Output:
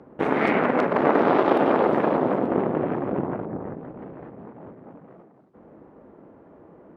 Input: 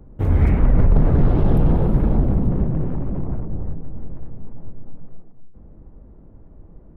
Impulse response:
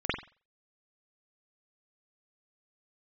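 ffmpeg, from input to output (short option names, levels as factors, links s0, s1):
-af "crystalizer=i=6:c=0,afftfilt=real='re*lt(hypot(re,im),0.794)':imag='im*lt(hypot(re,im),0.794)':win_size=1024:overlap=0.75,aeval=exprs='0.299*(cos(1*acos(clip(val(0)/0.299,-1,1)))-cos(1*PI/2))+0.0531*(cos(3*acos(clip(val(0)/0.299,-1,1)))-cos(3*PI/2))+0.133*(cos(4*acos(clip(val(0)/0.299,-1,1)))-cos(4*PI/2))+0.0266*(cos(5*acos(clip(val(0)/0.299,-1,1)))-cos(5*PI/2))+0.0376*(cos(6*acos(clip(val(0)/0.299,-1,1)))-cos(6*PI/2))':c=same,highpass=320,lowpass=2000,volume=2.51"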